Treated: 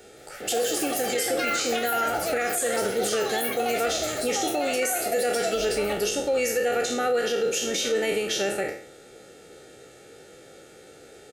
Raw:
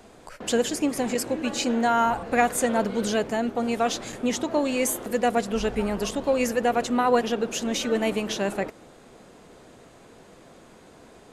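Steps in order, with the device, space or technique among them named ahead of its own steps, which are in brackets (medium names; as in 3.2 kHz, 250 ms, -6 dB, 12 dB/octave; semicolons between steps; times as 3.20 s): spectral sustain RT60 0.50 s; treble shelf 5.8 kHz +4.5 dB; comb 2.2 ms, depth 55%; ever faster or slower copies 166 ms, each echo +7 st, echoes 3, each echo -6 dB; PA system with an anti-feedback notch (high-pass 170 Hz 6 dB/octave; Butterworth band-stop 1 kHz, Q 2.5; peak limiter -16.5 dBFS, peak gain reduction 9 dB)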